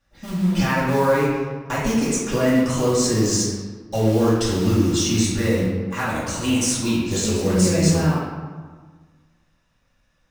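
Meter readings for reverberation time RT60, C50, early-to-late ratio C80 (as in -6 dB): 1.5 s, -1.0 dB, 1.5 dB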